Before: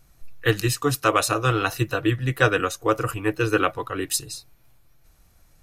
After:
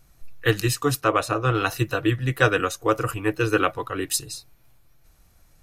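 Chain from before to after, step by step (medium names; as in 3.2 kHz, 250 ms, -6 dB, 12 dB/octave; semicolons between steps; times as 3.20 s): 1.01–1.55 s: treble shelf 3.4 kHz -12 dB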